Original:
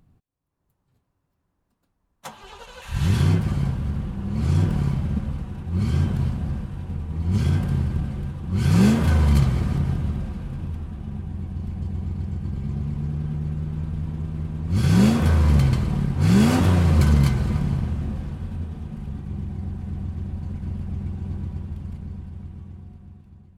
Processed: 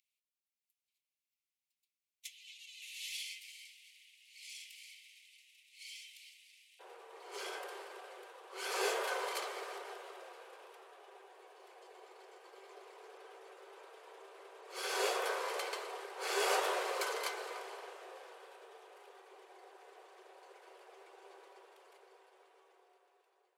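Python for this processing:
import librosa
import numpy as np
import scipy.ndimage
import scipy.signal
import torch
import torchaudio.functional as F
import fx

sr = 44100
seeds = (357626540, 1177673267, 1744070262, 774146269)

y = fx.steep_highpass(x, sr, hz=fx.steps((0.0, 2100.0), (6.79, 390.0)), slope=96)
y = y * librosa.db_to_amplitude(-5.0)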